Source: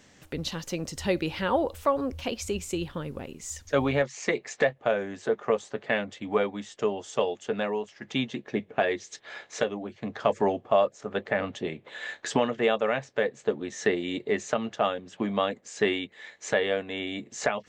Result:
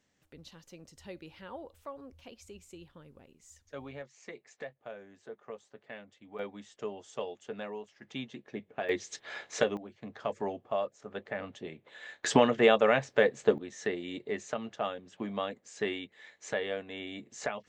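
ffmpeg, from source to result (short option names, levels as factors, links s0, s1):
-af "asetnsamples=n=441:p=0,asendcmd='6.39 volume volume -11dB;8.89 volume volume -0.5dB;9.77 volume volume -10dB;12.24 volume volume 2dB;13.58 volume volume -8dB',volume=0.112"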